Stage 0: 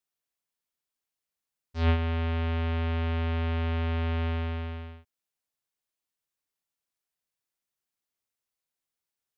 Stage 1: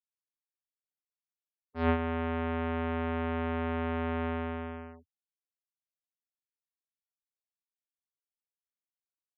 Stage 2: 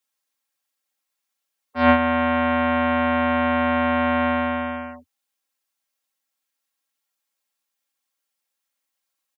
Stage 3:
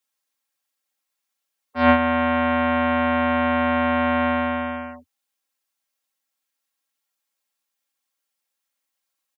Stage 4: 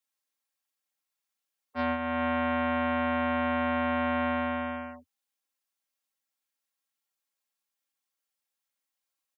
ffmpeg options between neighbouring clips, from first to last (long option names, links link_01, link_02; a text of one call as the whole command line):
ffmpeg -i in.wav -filter_complex "[0:a]aeval=exprs='0.178*(cos(1*acos(clip(val(0)/0.178,-1,1)))-cos(1*PI/2))+0.00178*(cos(7*acos(clip(val(0)/0.178,-1,1)))-cos(7*PI/2))':channel_layout=same,afftfilt=real='re*gte(hypot(re,im),0.00355)':imag='im*gte(hypot(re,im),0.00355)':win_size=1024:overlap=0.75,acrossover=split=160 2200:gain=0.2 1 0.112[link_01][link_02][link_03];[link_01][link_02][link_03]amix=inputs=3:normalize=0,volume=3dB" out.wav
ffmpeg -i in.wav -filter_complex "[0:a]highpass=98,aecho=1:1:3.7:0.9,acrossover=split=360|500[link_01][link_02][link_03];[link_03]acontrast=68[link_04];[link_01][link_02][link_04]amix=inputs=3:normalize=0,volume=6.5dB" out.wav
ffmpeg -i in.wav -af anull out.wav
ffmpeg -i in.wav -af "alimiter=limit=-14dB:level=0:latency=1:release=465,volume=-6dB" out.wav